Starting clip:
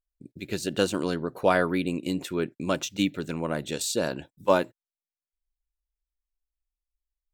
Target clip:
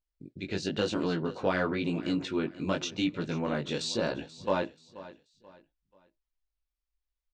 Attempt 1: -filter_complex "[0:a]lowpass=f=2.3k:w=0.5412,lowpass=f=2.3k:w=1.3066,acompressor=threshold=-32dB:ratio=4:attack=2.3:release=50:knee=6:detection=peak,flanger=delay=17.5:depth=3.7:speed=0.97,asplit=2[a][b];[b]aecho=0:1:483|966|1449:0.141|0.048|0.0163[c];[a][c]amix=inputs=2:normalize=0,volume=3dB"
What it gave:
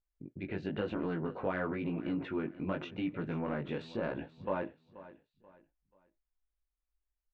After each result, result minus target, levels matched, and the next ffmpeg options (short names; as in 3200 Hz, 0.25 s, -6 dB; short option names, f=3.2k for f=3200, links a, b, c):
4000 Hz band -10.5 dB; compressor: peak gain reduction +6.5 dB
-filter_complex "[0:a]lowpass=f=5.6k:w=0.5412,lowpass=f=5.6k:w=1.3066,acompressor=threshold=-32dB:ratio=4:attack=2.3:release=50:knee=6:detection=peak,flanger=delay=17.5:depth=3.7:speed=0.97,asplit=2[a][b];[b]aecho=0:1:483|966|1449:0.141|0.048|0.0163[c];[a][c]amix=inputs=2:normalize=0,volume=3dB"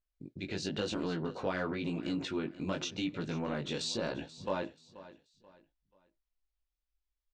compressor: peak gain reduction +6.5 dB
-filter_complex "[0:a]lowpass=f=5.6k:w=0.5412,lowpass=f=5.6k:w=1.3066,acompressor=threshold=-23.5dB:ratio=4:attack=2.3:release=50:knee=6:detection=peak,flanger=delay=17.5:depth=3.7:speed=0.97,asplit=2[a][b];[b]aecho=0:1:483|966|1449:0.141|0.048|0.0163[c];[a][c]amix=inputs=2:normalize=0,volume=3dB"